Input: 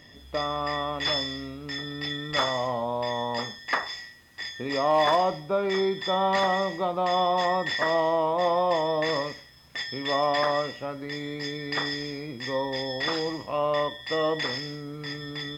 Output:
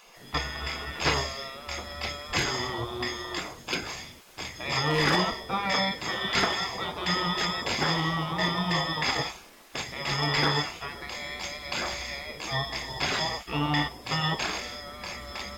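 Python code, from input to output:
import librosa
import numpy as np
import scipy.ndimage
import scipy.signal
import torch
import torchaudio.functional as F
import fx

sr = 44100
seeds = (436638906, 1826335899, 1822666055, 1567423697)

y = fx.spec_gate(x, sr, threshold_db=-15, keep='weak')
y = fx.low_shelf(y, sr, hz=440.0, db=5.0)
y = F.gain(torch.from_numpy(y), 8.5).numpy()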